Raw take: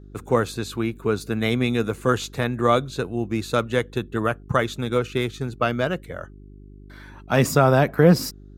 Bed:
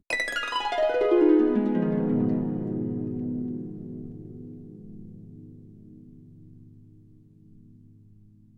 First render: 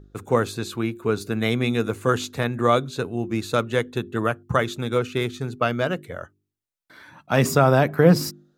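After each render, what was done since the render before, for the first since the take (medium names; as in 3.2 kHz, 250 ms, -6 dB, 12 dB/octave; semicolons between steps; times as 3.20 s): de-hum 50 Hz, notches 8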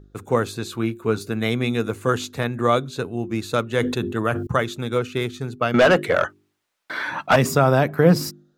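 0.64–1.30 s: doubling 18 ms -10.5 dB; 3.71–4.47 s: decay stretcher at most 58 dB/s; 5.74–7.36 s: overdrive pedal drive 29 dB, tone 2.1 kHz, clips at -4.5 dBFS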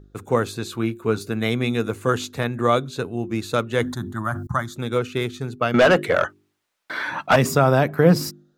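3.83–4.76 s: static phaser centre 1.1 kHz, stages 4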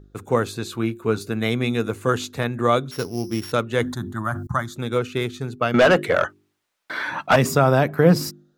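2.91–3.52 s: sorted samples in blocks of 8 samples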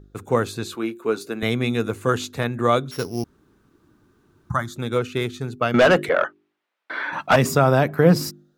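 0.75–1.43 s: Chebyshev high-pass 320 Hz; 3.24–4.50 s: room tone; 6.09–7.13 s: three-band isolator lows -24 dB, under 200 Hz, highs -16 dB, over 3.6 kHz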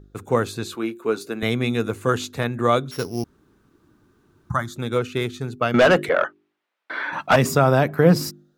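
no audible change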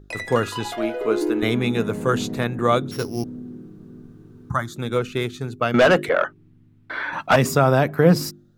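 add bed -4.5 dB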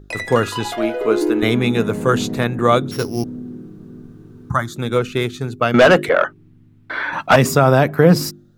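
trim +4.5 dB; peak limiter -1 dBFS, peak gain reduction 2 dB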